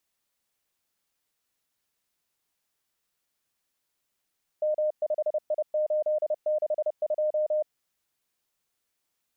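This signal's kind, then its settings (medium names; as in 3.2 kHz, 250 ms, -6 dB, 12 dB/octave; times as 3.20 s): Morse "M5I862" 30 wpm 611 Hz -22.5 dBFS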